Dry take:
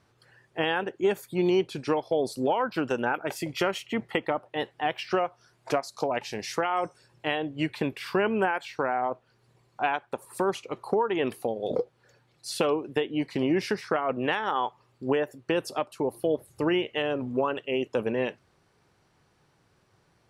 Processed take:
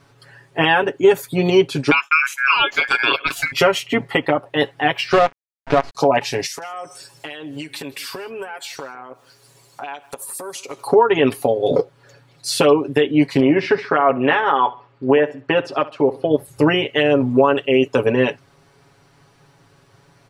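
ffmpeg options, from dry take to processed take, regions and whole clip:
ffmpeg -i in.wav -filter_complex "[0:a]asettb=1/sr,asplit=3[link_01][link_02][link_03];[link_01]atrim=end=1.914[link_04];[link_02]atrim=start=1.91:end=3.52,asetpts=PTS-STARTPTS,afade=type=in:duration=0.004:curve=qsin,afade=type=out:start_time=1.606:duration=0.004:curve=qsin,agate=range=-33dB:threshold=-39dB:ratio=3:release=100:detection=peak,aeval=exprs='val(0)*sin(2*PI*1900*n/s)':channel_layout=same[link_05];[link_03]atrim=start=3.516[link_06];[link_04][link_05]acrossfade=duration=0.004:curve1=hsin:curve2=qsin[link_07];[link_07][link_06]acrossfade=duration=0.004:curve1=qsin:curve2=hsin,asettb=1/sr,asplit=3[link_08][link_09][link_10];[link_08]atrim=end=5.124[link_11];[link_09]atrim=start=5.12:end=5.95,asetpts=PTS-STARTPTS,afade=type=in:duration=0.004:curve=qsin,afade=type=out:start_time=0.826:duration=0.004:curve=qsin,acrusher=bits=5:dc=4:mix=0:aa=0.000001,lowpass=2500[link_12];[link_10]atrim=start=5.946[link_13];[link_11][link_12]acrossfade=duration=0.004:curve1=hsin:curve2=qsin[link_14];[link_14][link_13]acrossfade=duration=0.004:curve1=qsin:curve2=hsin,asettb=1/sr,asplit=3[link_15][link_16][link_17];[link_15]atrim=end=6.464[link_18];[link_16]atrim=start=6.46:end=10.87,asetpts=PTS-STARTPTS,afade=type=in:duration=0.004:curve=qsin,afade=type=out:start_time=4.406:duration=0.004:curve=qsin,bass=frequency=250:gain=-8,treble=frequency=4000:gain=14,acompressor=threshold=-40dB:ratio=8:attack=3.2:release=140:knee=1:detection=peak,aecho=1:1:158:0.0841,atrim=end_sample=194481[link_19];[link_17]atrim=start=10.866[link_20];[link_18][link_19]acrossfade=duration=0.004:curve1=hsin:curve2=qsin[link_21];[link_21][link_20]acrossfade=duration=0.004:curve1=qsin:curve2=hsin,asettb=1/sr,asplit=3[link_22][link_23][link_24];[link_22]atrim=end=13.404[link_25];[link_23]atrim=start=13.4:end=16.31,asetpts=PTS-STARTPTS,afade=type=in:duration=0.004:curve=qsin,afade=type=out:start_time=2.906:duration=0.004:curve=qsin,lowpass=2800,lowshelf=frequency=210:gain=-8,aecho=1:1:67|134|201:0.119|0.0392|0.0129,atrim=end_sample=128331[link_26];[link_24]atrim=start=16.306[link_27];[link_25][link_26]acrossfade=duration=0.004:curve1=hsin:curve2=qsin[link_28];[link_28][link_27]acrossfade=duration=0.004:curve1=qsin:curve2=hsin,aecho=1:1:7.2:0.84,alimiter=level_in=12.5dB:limit=-1dB:release=50:level=0:latency=1,volume=-2.5dB" out.wav

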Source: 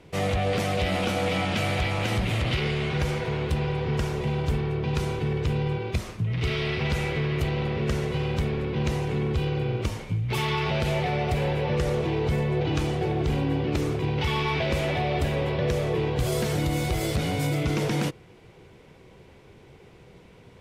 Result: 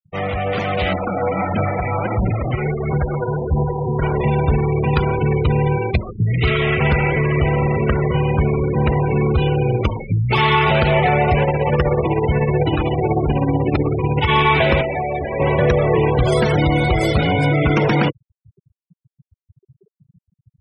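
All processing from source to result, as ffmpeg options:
ffmpeg -i in.wav -filter_complex "[0:a]asettb=1/sr,asplit=3[link_01][link_02][link_03];[link_01]atrim=end=0.934[link_04];[link_02]atrim=start=0.93:end=4.02,asetpts=PTS-STARTPTS,afade=type=in:duration=0.004:curve=qsin,afade=type=out:start_time=3.086:duration=0.004:curve=qsin,lowpass=1800,flanger=delay=0.1:depth=8.3:regen=34:speed=1.5:shape=sinusoidal[link_05];[link_03]atrim=start=4.016[link_06];[link_04][link_05]acrossfade=duration=0.004:curve1=hsin:curve2=qsin[link_07];[link_07][link_06]acrossfade=duration=0.004:curve1=qsin:curve2=hsin,asettb=1/sr,asplit=3[link_08][link_09][link_10];[link_08]atrim=end=6.504[link_11];[link_09]atrim=start=6.5:end=9.05,asetpts=PTS-STARTPTS,afade=type=in:duration=0.004:curve=qsin,afade=type=out:start_time=2.546:duration=0.004:curve=qsin,aemphasis=mode=reproduction:type=50kf,aecho=1:1:211:0.2,atrim=end_sample=112455[link_12];[link_10]atrim=start=9.046[link_13];[link_11][link_12]acrossfade=duration=0.004:curve1=hsin:curve2=qsin[link_14];[link_14][link_13]acrossfade=duration=0.004:curve1=qsin:curve2=hsin,asettb=1/sr,asplit=3[link_15][link_16][link_17];[link_15]atrim=end=11.434[link_18];[link_16]atrim=start=11.43:end=14.29,asetpts=PTS-STARTPTS,afade=type=in:duration=0.004:curve=qsin,afade=type=out:start_time=2.856:duration=0.004:curve=qsin,tremolo=f=16:d=0.47,asplit=2[link_19][link_20];[link_20]adelay=219,lowpass=frequency=1500:poles=1,volume=-13.5dB,asplit=2[link_21][link_22];[link_22]adelay=219,lowpass=frequency=1500:poles=1,volume=0.49,asplit=2[link_23][link_24];[link_24]adelay=219,lowpass=frequency=1500:poles=1,volume=0.49,asplit=2[link_25][link_26];[link_26]adelay=219,lowpass=frequency=1500:poles=1,volume=0.49,asplit=2[link_27][link_28];[link_28]adelay=219,lowpass=frequency=1500:poles=1,volume=0.49[link_29];[link_19][link_21][link_23][link_25][link_27][link_29]amix=inputs=6:normalize=0,atrim=end_sample=126126[link_30];[link_17]atrim=start=14.286[link_31];[link_18][link_30]acrossfade=duration=0.004:curve1=hsin:curve2=qsin[link_32];[link_32][link_31]acrossfade=duration=0.004:curve1=qsin:curve2=hsin,asettb=1/sr,asplit=3[link_33][link_34][link_35];[link_33]atrim=end=14.814[link_36];[link_34]atrim=start=14.81:end=15.4,asetpts=PTS-STARTPTS,afade=type=in:duration=0.004:curve=qsin,afade=type=out:start_time=0.586:duration=0.004:curve=qsin,bandreject=frequency=50:width_type=h:width=6,bandreject=frequency=100:width_type=h:width=6,bandreject=frequency=150:width_type=h:width=6,bandreject=frequency=200:width_type=h:width=6,bandreject=frequency=250:width_type=h:width=6,bandreject=frequency=300:width_type=h:width=6,bandreject=frequency=350:width_type=h:width=6,bandreject=frequency=400:width_type=h:width=6,bandreject=frequency=450:width_type=h:width=6,acrossover=split=280|1500[link_37][link_38][link_39];[link_37]acompressor=threshold=-38dB:ratio=4[link_40];[link_38]acompressor=threshold=-33dB:ratio=4[link_41];[link_39]acompressor=threshold=-42dB:ratio=4[link_42];[link_40][link_41][link_42]amix=inputs=3:normalize=0[link_43];[link_35]atrim=start=15.396[link_44];[link_36][link_43]acrossfade=duration=0.004:curve1=hsin:curve2=qsin[link_45];[link_45][link_44]acrossfade=duration=0.004:curve1=qsin:curve2=hsin,afftfilt=real='re*gte(hypot(re,im),0.0282)':imag='im*gte(hypot(re,im),0.0282)':win_size=1024:overlap=0.75,equalizer=frequency=1300:width_type=o:width=1.9:gain=7,dynaudnorm=framelen=410:gausssize=5:maxgain=8dB,volume=1dB" out.wav

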